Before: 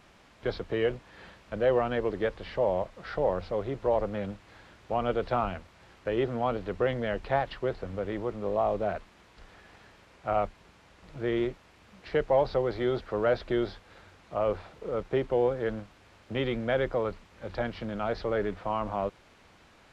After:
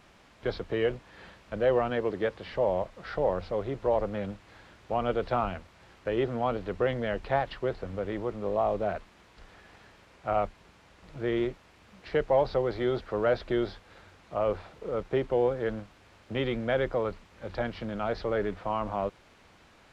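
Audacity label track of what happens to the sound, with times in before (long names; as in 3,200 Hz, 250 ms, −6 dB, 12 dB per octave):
1.900000	2.530000	high-pass filter 81 Hz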